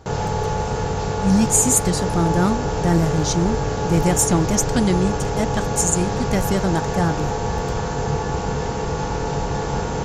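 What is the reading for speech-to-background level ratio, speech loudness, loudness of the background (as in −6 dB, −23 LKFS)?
3.0 dB, −20.5 LKFS, −23.5 LKFS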